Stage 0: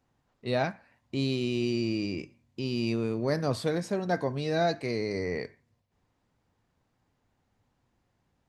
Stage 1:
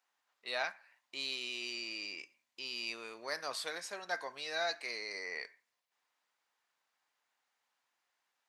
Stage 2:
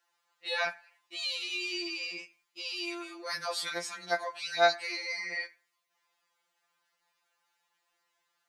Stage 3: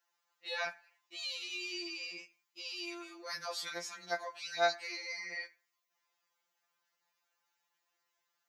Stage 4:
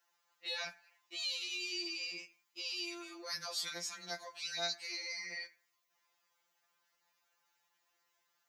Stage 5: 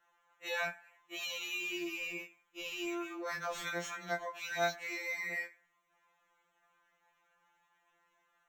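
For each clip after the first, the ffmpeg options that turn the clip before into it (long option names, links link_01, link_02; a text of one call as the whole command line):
ffmpeg -i in.wav -af "highpass=1200" out.wav
ffmpeg -i in.wav -af "afftfilt=real='re*2.83*eq(mod(b,8),0)':imag='im*2.83*eq(mod(b,8),0)':win_size=2048:overlap=0.75,volume=7.5dB" out.wav
ffmpeg -i in.wav -af "aexciter=amount=1.3:drive=2.8:freq=5400,volume=-6dB" out.wav
ffmpeg -i in.wav -filter_complex "[0:a]acrossover=split=220|3000[link_01][link_02][link_03];[link_02]acompressor=threshold=-53dB:ratio=2.5[link_04];[link_01][link_04][link_03]amix=inputs=3:normalize=0,volume=3.5dB" out.wav
ffmpeg -i in.wav -filter_complex "[0:a]acrossover=split=2200[link_01][link_02];[link_02]acrusher=samples=9:mix=1:aa=0.000001[link_03];[link_01][link_03]amix=inputs=2:normalize=0,afftfilt=real='re*2.83*eq(mod(b,8),0)':imag='im*2.83*eq(mod(b,8),0)':win_size=2048:overlap=0.75,volume=3dB" out.wav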